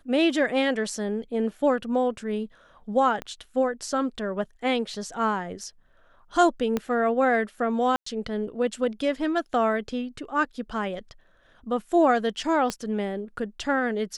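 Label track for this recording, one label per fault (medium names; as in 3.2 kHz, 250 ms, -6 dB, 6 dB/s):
3.220000	3.220000	pop -19 dBFS
6.770000	6.770000	pop -13 dBFS
7.960000	8.060000	dropout 104 ms
12.700000	12.700000	pop -13 dBFS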